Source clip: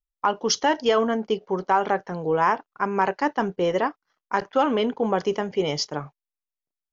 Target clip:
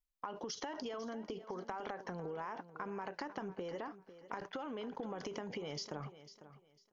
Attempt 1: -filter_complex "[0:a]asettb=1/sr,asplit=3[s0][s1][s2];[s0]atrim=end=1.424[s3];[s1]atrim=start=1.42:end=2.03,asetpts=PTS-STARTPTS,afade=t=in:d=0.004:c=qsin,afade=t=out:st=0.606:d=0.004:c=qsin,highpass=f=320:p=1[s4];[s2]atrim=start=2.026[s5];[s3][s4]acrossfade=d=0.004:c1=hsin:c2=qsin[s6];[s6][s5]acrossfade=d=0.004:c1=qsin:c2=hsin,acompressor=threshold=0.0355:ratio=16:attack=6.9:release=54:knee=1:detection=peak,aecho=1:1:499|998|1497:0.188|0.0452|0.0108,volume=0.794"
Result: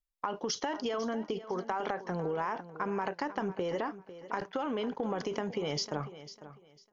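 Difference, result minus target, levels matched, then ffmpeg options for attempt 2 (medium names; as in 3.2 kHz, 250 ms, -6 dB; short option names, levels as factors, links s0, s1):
compression: peak gain reduction -9.5 dB
-filter_complex "[0:a]asettb=1/sr,asplit=3[s0][s1][s2];[s0]atrim=end=1.424[s3];[s1]atrim=start=1.42:end=2.03,asetpts=PTS-STARTPTS,afade=t=in:d=0.004:c=qsin,afade=t=out:st=0.606:d=0.004:c=qsin,highpass=f=320:p=1[s4];[s2]atrim=start=2.026[s5];[s3][s4]acrossfade=d=0.004:c1=hsin:c2=qsin[s6];[s6][s5]acrossfade=d=0.004:c1=qsin:c2=hsin,acompressor=threshold=0.0112:ratio=16:attack=6.9:release=54:knee=1:detection=peak,aecho=1:1:499|998|1497:0.188|0.0452|0.0108,volume=0.794"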